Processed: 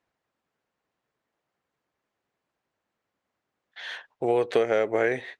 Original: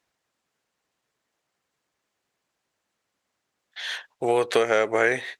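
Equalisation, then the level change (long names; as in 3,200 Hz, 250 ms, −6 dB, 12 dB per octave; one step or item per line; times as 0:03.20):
low-pass filter 1,600 Hz 6 dB per octave
dynamic equaliser 1,200 Hz, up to −6 dB, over −38 dBFS, Q 1.3
0.0 dB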